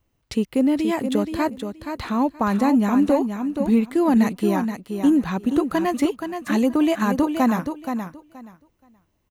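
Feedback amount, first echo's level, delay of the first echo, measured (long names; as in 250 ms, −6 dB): 18%, −7.5 dB, 475 ms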